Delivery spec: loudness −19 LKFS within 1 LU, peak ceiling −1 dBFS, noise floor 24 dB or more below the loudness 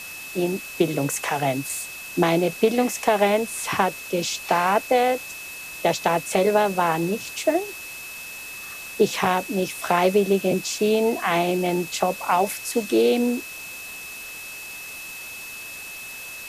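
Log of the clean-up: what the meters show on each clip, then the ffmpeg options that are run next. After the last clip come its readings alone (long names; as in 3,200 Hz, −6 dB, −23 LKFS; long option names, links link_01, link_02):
interfering tone 2,600 Hz; level of the tone −36 dBFS; background noise floor −37 dBFS; target noise floor −47 dBFS; integrated loudness −22.5 LKFS; sample peak −6.5 dBFS; target loudness −19.0 LKFS
→ -af "bandreject=frequency=2600:width=30"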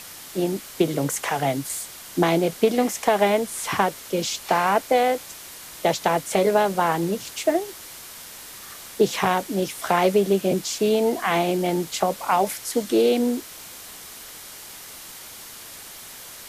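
interfering tone none found; background noise floor −41 dBFS; target noise floor −47 dBFS
→ -af "afftdn=noise_reduction=6:noise_floor=-41"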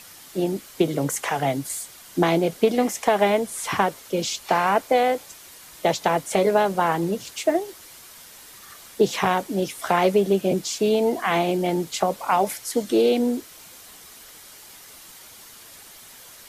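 background noise floor −46 dBFS; target noise floor −47 dBFS
→ -af "afftdn=noise_reduction=6:noise_floor=-46"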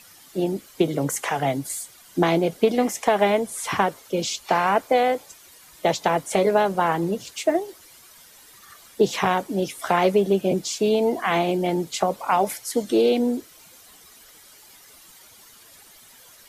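background noise floor −50 dBFS; integrated loudness −23.0 LKFS; sample peak −6.5 dBFS; target loudness −19.0 LKFS
→ -af "volume=4dB"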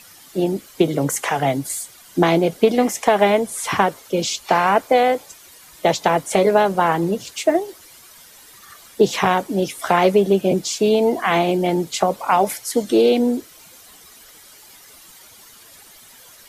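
integrated loudness −19.0 LKFS; sample peak −2.5 dBFS; background noise floor −46 dBFS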